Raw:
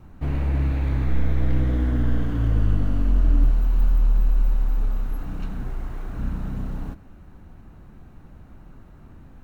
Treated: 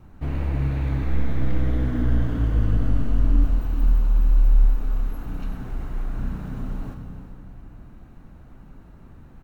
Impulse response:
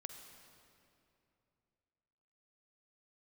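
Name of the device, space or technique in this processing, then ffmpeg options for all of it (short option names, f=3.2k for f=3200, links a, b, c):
cave: -filter_complex "[0:a]aecho=1:1:391:0.211[a];[1:a]atrim=start_sample=2205[b];[a][b]afir=irnorm=-1:irlink=0,volume=3.5dB"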